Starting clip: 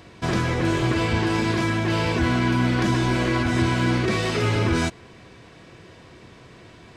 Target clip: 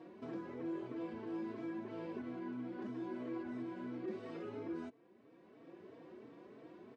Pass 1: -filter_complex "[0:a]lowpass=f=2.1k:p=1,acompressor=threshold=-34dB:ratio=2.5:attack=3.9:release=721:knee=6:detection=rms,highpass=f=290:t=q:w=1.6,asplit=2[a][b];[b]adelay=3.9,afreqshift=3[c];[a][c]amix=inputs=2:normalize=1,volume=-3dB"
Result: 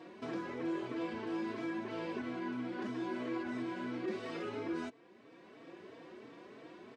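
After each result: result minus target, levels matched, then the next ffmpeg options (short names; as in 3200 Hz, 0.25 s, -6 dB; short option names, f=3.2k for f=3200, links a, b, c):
2000 Hz band +6.0 dB; compressor: peak gain reduction -3 dB
-filter_complex "[0:a]lowpass=f=580:p=1,acompressor=threshold=-34dB:ratio=2.5:attack=3.9:release=721:knee=6:detection=rms,highpass=f=290:t=q:w=1.6,asplit=2[a][b];[b]adelay=3.9,afreqshift=3[c];[a][c]amix=inputs=2:normalize=1,volume=-3dB"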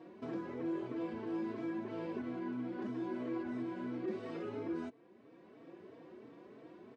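compressor: peak gain reduction -3.5 dB
-filter_complex "[0:a]lowpass=f=580:p=1,acompressor=threshold=-40dB:ratio=2.5:attack=3.9:release=721:knee=6:detection=rms,highpass=f=290:t=q:w=1.6,asplit=2[a][b];[b]adelay=3.9,afreqshift=3[c];[a][c]amix=inputs=2:normalize=1,volume=-3dB"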